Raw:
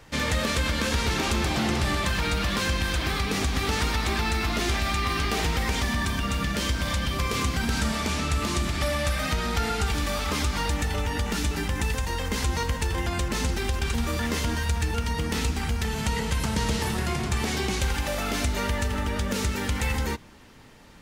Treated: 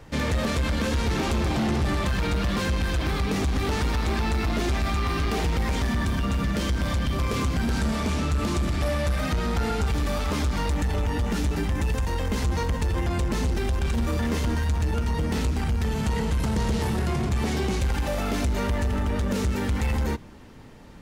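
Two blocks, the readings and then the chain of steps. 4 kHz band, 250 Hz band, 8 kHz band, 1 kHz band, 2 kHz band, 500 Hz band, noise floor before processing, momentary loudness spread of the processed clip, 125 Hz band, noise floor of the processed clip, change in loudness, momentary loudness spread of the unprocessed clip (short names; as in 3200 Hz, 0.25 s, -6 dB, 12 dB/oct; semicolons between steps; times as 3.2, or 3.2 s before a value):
-5.0 dB, +2.5 dB, -5.5 dB, -1.0 dB, -3.5 dB, +1.5 dB, -31 dBFS, 1 LU, +2.5 dB, -28 dBFS, +0.5 dB, 3 LU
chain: tilt shelf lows +4.5 dB; soft clip -20.5 dBFS, distortion -14 dB; gain +1.5 dB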